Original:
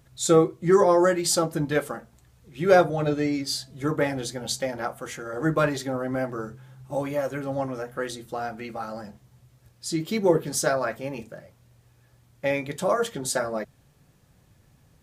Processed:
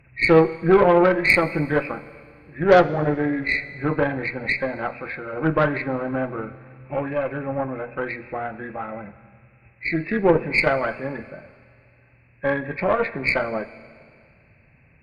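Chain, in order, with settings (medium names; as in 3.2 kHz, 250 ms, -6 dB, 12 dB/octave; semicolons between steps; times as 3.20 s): knee-point frequency compression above 1.5 kHz 4:1; Chebyshev shaper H 6 -21 dB, 7 -37 dB, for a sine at -5.5 dBFS; Schroeder reverb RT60 2.2 s, combs from 27 ms, DRR 15.5 dB; trim +3 dB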